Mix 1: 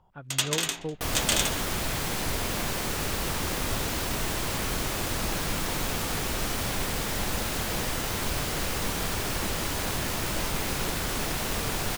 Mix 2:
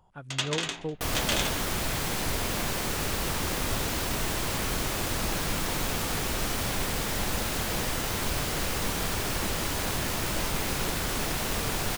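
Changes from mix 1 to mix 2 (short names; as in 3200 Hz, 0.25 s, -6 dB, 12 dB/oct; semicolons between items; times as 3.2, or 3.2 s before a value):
speech: remove air absorption 120 m; first sound: add air absorption 94 m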